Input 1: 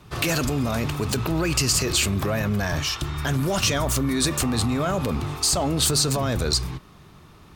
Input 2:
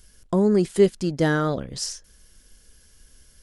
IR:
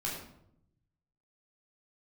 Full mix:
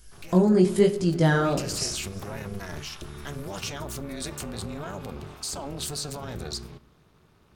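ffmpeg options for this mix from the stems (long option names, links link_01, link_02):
-filter_complex "[0:a]tremolo=f=290:d=0.947,volume=-8.5dB,afade=type=in:start_time=1.21:duration=0.54:silence=0.298538,asplit=2[link_01][link_02];[link_02]volume=-21dB[link_03];[1:a]flanger=delay=17.5:depth=5.1:speed=1,volume=1.5dB,asplit=3[link_04][link_05][link_06];[link_05]volume=-12.5dB[link_07];[link_06]volume=-23dB[link_08];[2:a]atrim=start_sample=2205[link_09];[link_03][link_07]amix=inputs=2:normalize=0[link_10];[link_10][link_09]afir=irnorm=-1:irlink=0[link_11];[link_08]aecho=0:1:341:1[link_12];[link_01][link_04][link_11][link_12]amix=inputs=4:normalize=0"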